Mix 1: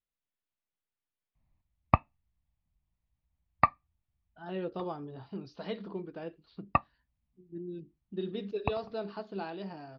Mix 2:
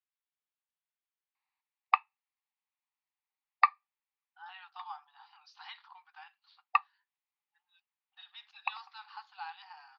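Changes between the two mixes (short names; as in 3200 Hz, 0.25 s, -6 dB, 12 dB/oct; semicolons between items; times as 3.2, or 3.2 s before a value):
background: add tilt +3.5 dB/oct; master: add brick-wall FIR high-pass 740 Hz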